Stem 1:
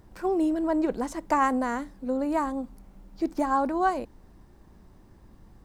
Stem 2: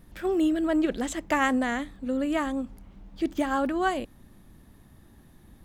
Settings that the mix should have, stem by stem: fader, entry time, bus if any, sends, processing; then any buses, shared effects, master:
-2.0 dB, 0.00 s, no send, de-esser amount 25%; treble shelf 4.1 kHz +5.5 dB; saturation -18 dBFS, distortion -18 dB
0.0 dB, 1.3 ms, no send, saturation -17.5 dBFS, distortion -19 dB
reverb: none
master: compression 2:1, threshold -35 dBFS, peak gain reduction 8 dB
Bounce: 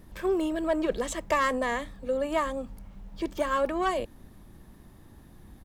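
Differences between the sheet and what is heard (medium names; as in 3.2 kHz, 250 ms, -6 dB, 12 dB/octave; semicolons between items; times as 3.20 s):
stem 1: missing treble shelf 4.1 kHz +5.5 dB; master: missing compression 2:1, threshold -35 dBFS, peak gain reduction 8 dB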